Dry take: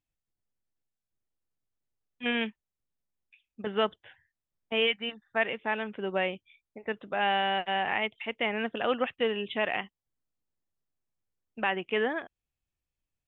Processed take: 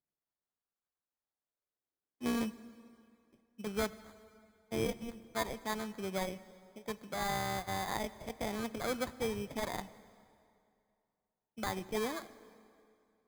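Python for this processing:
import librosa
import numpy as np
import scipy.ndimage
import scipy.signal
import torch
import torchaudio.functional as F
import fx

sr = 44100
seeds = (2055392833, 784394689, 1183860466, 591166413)

y = fx.filter_sweep_highpass(x, sr, from_hz=2400.0, to_hz=150.0, start_s=0.28, end_s=2.62, q=2.6)
y = fx.sample_hold(y, sr, seeds[0], rate_hz=2800.0, jitter_pct=0)
y = fx.rev_plate(y, sr, seeds[1], rt60_s=2.5, hf_ratio=0.8, predelay_ms=0, drr_db=15.5)
y = F.gain(torch.from_numpy(y), -8.5).numpy()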